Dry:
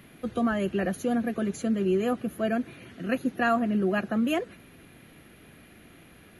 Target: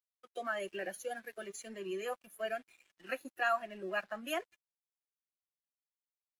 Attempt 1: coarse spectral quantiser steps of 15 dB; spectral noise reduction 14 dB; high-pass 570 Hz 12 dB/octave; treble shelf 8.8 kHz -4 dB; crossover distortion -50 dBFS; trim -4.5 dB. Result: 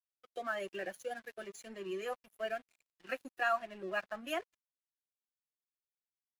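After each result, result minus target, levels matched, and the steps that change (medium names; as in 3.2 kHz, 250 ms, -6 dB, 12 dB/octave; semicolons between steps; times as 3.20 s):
8 kHz band -4.5 dB; crossover distortion: distortion +6 dB
change: treble shelf 8.8 kHz +4 dB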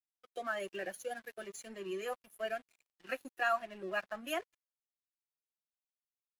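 crossover distortion: distortion +6 dB
change: crossover distortion -56.5 dBFS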